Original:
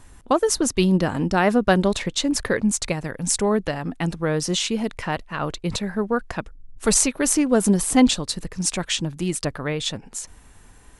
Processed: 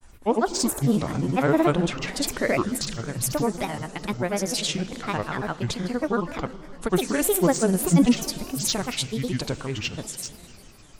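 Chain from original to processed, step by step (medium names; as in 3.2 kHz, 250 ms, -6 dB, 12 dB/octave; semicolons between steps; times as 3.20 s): Schroeder reverb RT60 3.4 s, combs from 26 ms, DRR 12 dB; granulator 100 ms, grains 20 per s, pitch spread up and down by 7 st; trim -1.5 dB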